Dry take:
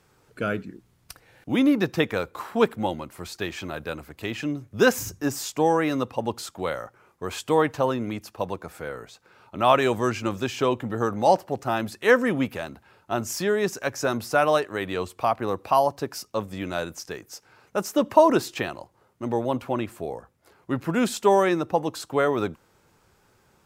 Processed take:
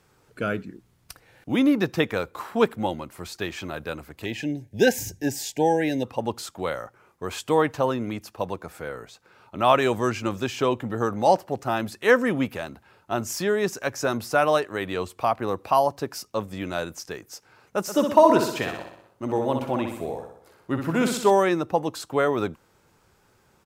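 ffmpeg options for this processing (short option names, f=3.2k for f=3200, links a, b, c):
-filter_complex "[0:a]asplit=3[a][b][c];[a]afade=t=out:st=4.24:d=0.02[d];[b]asuperstop=centerf=1200:order=20:qfactor=2,afade=t=in:st=4.24:d=0.02,afade=t=out:st=6.03:d=0.02[e];[c]afade=t=in:st=6.03:d=0.02[f];[d][e][f]amix=inputs=3:normalize=0,asplit=3[g][h][i];[g]afade=t=out:st=17.87:d=0.02[j];[h]aecho=1:1:62|124|186|248|310|372|434:0.501|0.271|0.146|0.0789|0.0426|0.023|0.0124,afade=t=in:st=17.87:d=0.02,afade=t=out:st=21.3:d=0.02[k];[i]afade=t=in:st=21.3:d=0.02[l];[j][k][l]amix=inputs=3:normalize=0"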